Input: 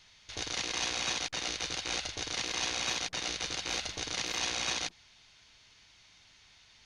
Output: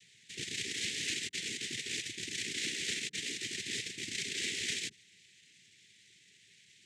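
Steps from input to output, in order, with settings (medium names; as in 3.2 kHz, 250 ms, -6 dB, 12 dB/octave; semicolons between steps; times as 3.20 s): steep low-pass 5.2 kHz; noise-vocoded speech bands 6; elliptic band-stop 400–1900 Hz, stop band 60 dB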